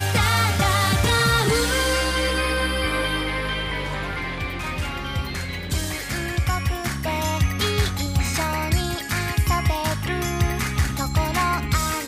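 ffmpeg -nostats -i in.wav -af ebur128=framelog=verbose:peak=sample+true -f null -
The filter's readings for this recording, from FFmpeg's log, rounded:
Integrated loudness:
  I:         -22.6 LUFS
  Threshold: -32.6 LUFS
Loudness range:
  LRA:         5.9 LU
  Threshold: -43.3 LUFS
  LRA low:   -26.4 LUFS
  LRA high:  -20.5 LUFS
Sample peak:
  Peak:      -10.6 dBFS
True peak:
  Peak:      -10.4 dBFS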